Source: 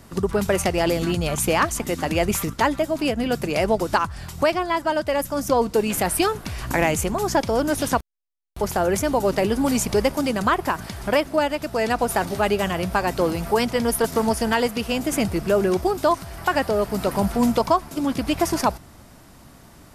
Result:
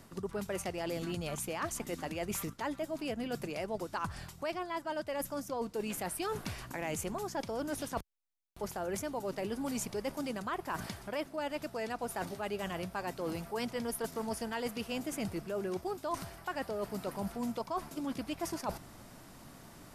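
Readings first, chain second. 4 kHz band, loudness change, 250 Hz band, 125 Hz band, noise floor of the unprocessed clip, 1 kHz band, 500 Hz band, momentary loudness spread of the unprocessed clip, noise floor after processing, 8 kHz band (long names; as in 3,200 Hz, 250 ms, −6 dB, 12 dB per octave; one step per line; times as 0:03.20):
−15.0 dB, −15.5 dB, −15.0 dB, −15.5 dB, −48 dBFS, −16.0 dB, −16.0 dB, 4 LU, −55 dBFS, −14.0 dB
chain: parametric band 61 Hz −10.5 dB 0.8 octaves
reversed playback
downward compressor 6 to 1, threshold −30 dBFS, peak gain reduction 16 dB
reversed playback
level −4.5 dB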